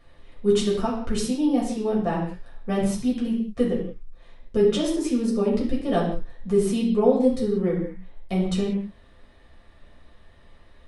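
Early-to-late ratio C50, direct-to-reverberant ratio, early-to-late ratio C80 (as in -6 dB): 4.5 dB, -5.5 dB, 7.0 dB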